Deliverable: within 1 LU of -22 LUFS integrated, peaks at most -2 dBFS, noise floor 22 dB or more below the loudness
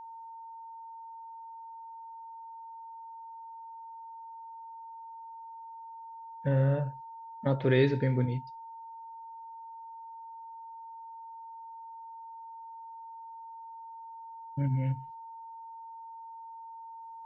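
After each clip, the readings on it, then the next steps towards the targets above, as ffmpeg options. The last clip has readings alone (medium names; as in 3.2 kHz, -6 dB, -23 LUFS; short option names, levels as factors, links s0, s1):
steady tone 910 Hz; tone level -43 dBFS; loudness -37.0 LUFS; peak level -12.5 dBFS; loudness target -22.0 LUFS
-> -af "bandreject=f=910:w=30"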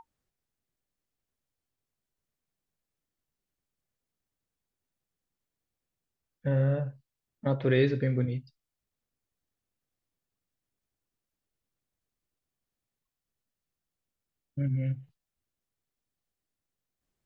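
steady tone not found; loudness -29.5 LUFS; peak level -12.5 dBFS; loudness target -22.0 LUFS
-> -af "volume=2.37"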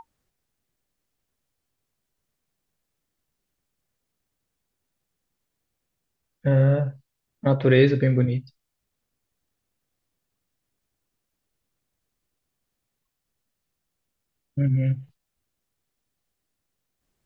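loudness -22.0 LUFS; peak level -5.0 dBFS; noise floor -81 dBFS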